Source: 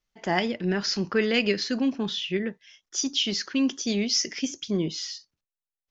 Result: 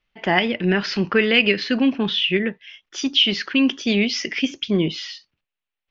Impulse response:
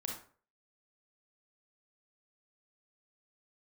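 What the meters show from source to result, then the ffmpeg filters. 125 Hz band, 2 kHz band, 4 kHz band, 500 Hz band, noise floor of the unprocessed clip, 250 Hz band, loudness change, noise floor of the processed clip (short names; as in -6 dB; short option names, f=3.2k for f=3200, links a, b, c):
+6.5 dB, +10.0 dB, +7.5 dB, +5.5 dB, under -85 dBFS, +6.0 dB, +7.0 dB, under -85 dBFS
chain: -filter_complex "[0:a]lowpass=f=2.8k:t=q:w=2.2,asplit=2[a][b];[b]alimiter=limit=-14dB:level=0:latency=1:release=199,volume=1dB[c];[a][c]amix=inputs=2:normalize=0"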